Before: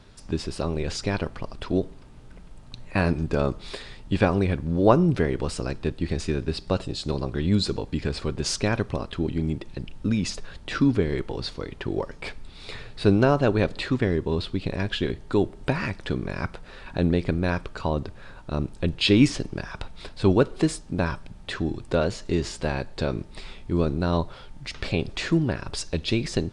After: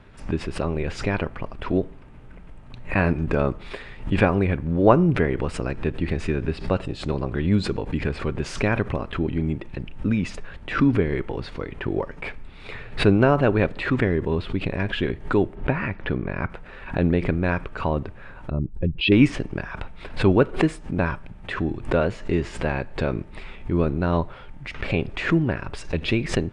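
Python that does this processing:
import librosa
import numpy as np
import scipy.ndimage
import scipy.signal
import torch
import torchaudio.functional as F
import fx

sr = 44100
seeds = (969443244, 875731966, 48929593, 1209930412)

y = fx.air_absorb(x, sr, metres=190.0, at=(15.55, 16.5))
y = fx.spec_expand(y, sr, power=1.8, at=(18.5, 19.12))
y = fx.high_shelf_res(y, sr, hz=3300.0, db=-10.5, q=1.5)
y = fx.pre_swell(y, sr, db_per_s=140.0)
y = y * librosa.db_to_amplitude(1.5)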